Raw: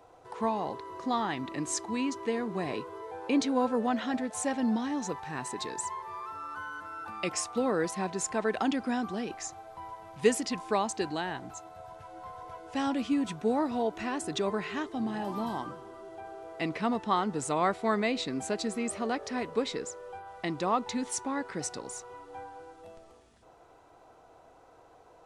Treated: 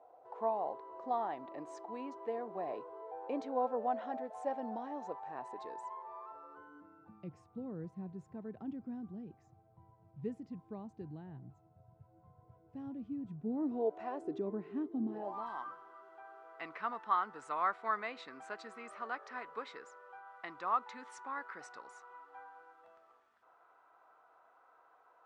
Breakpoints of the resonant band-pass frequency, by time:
resonant band-pass, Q 2.6
0:06.30 670 Hz
0:07.28 130 Hz
0:13.39 130 Hz
0:14.05 740 Hz
0:14.41 280 Hz
0:15.06 280 Hz
0:15.46 1,300 Hz

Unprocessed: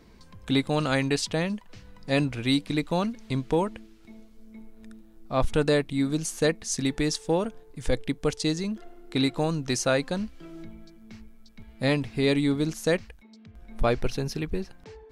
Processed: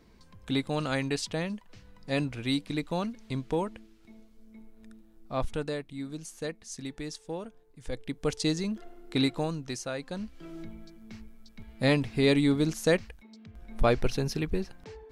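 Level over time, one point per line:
0:05.32 −5 dB
0:05.77 −12 dB
0:07.84 −12 dB
0:08.36 −1.5 dB
0:09.23 −1.5 dB
0:09.93 −12 dB
0:10.49 0 dB

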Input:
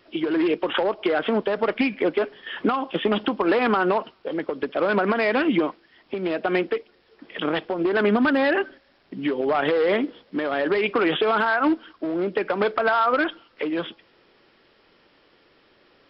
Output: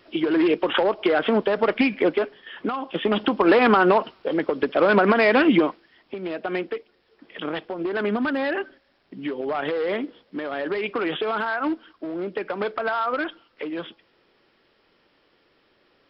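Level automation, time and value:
0:02.09 +2 dB
0:02.53 −6.5 dB
0:03.46 +4 dB
0:05.52 +4 dB
0:06.18 −4.5 dB

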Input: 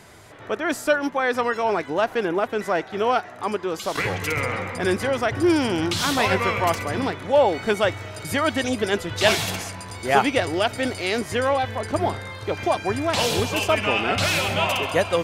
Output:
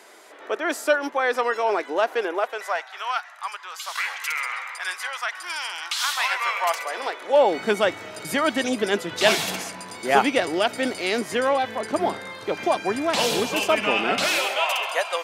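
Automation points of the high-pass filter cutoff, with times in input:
high-pass filter 24 dB per octave
0:02.11 320 Hz
0:03.04 1,000 Hz
0:06.17 1,000 Hz
0:07.21 430 Hz
0:07.57 170 Hz
0:14.14 170 Hz
0:14.66 630 Hz

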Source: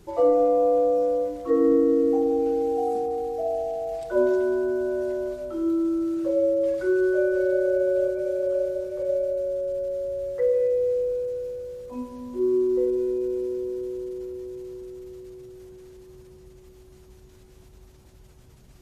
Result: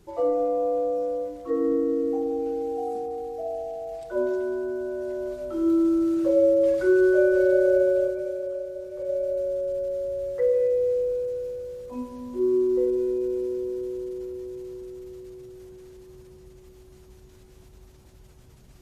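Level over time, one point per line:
0:04.99 −4.5 dB
0:05.75 +3 dB
0:07.78 +3 dB
0:08.64 −8 dB
0:09.37 0 dB

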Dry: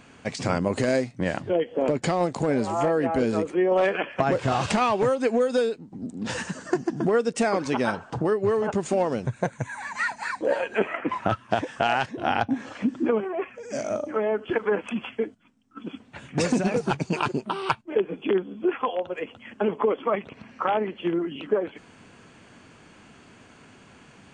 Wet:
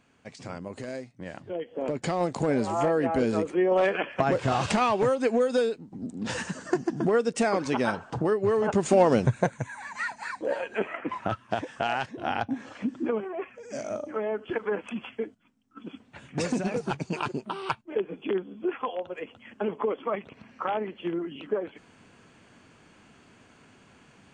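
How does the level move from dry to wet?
0:01.23 −13.5 dB
0:02.35 −1.5 dB
0:08.49 −1.5 dB
0:09.21 +6.5 dB
0:09.74 −5 dB

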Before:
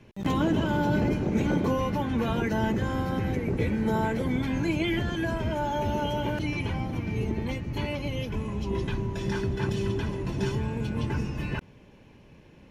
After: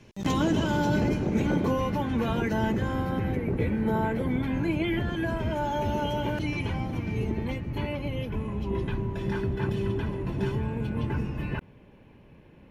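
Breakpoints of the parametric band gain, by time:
parametric band 6,100 Hz 1.3 octaves
0:00.82 +8 dB
0:01.44 −1.5 dB
0:02.66 −1.5 dB
0:03.44 −12 dB
0:04.96 −12 dB
0:05.63 −1.5 dB
0:07.09 −1.5 dB
0:07.93 −12.5 dB

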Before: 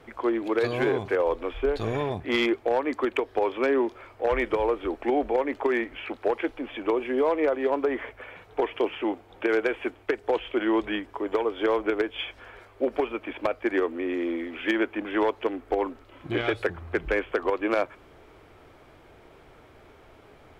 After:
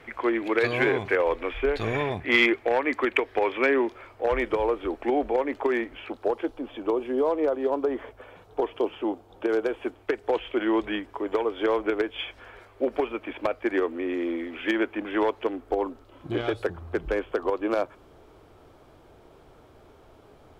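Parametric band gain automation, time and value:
parametric band 2,100 Hz 0.97 octaves
0:03.68 +9 dB
0:04.12 −1 dB
0:05.72 −1 dB
0:06.35 −11.5 dB
0:09.73 −11.5 dB
0:10.15 −1 dB
0:15.36 −1 dB
0:15.76 −8.5 dB

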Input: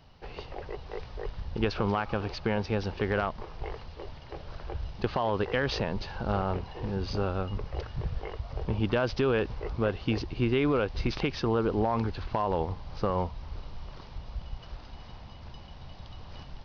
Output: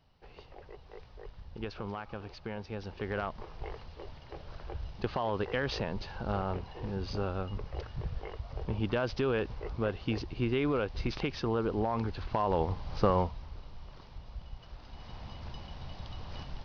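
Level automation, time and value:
0:02.68 −11 dB
0:03.40 −4 dB
0:11.97 −4 dB
0:13.08 +3 dB
0:13.54 −6 dB
0:14.72 −6 dB
0:15.26 +2 dB

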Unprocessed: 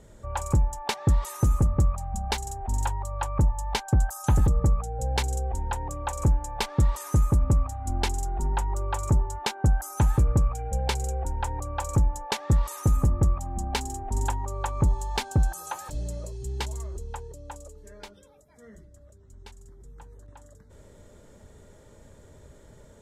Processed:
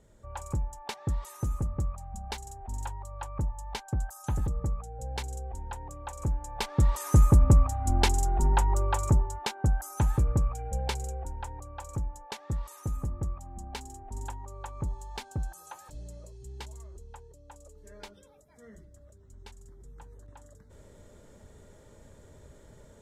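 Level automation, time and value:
0:06.19 −9 dB
0:07.21 +3 dB
0:08.77 +3 dB
0:09.44 −4 dB
0:10.81 −4 dB
0:11.70 −11 dB
0:17.46 −11 dB
0:17.96 −2 dB

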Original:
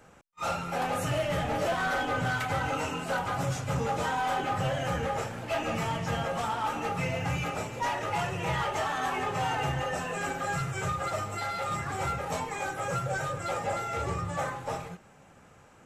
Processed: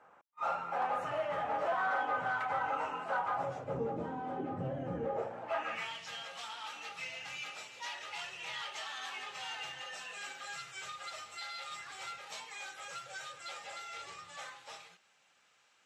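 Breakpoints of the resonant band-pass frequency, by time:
resonant band-pass, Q 1.5
0:03.32 1,000 Hz
0:03.97 280 Hz
0:04.91 280 Hz
0:05.44 800 Hz
0:05.99 3,900 Hz

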